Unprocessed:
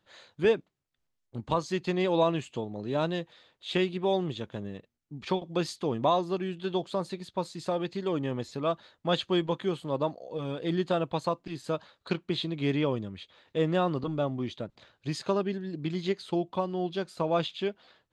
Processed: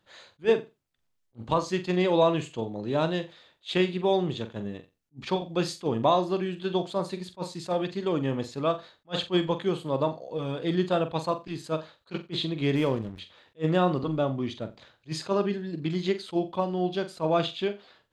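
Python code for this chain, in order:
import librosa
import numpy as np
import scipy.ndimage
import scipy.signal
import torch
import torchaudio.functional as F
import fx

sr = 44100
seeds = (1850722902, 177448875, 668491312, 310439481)

y = fx.room_flutter(x, sr, wall_m=7.6, rt60_s=0.25)
y = fx.backlash(y, sr, play_db=-38.5, at=(12.75, 13.19))
y = fx.attack_slew(y, sr, db_per_s=430.0)
y = y * librosa.db_to_amplitude(2.5)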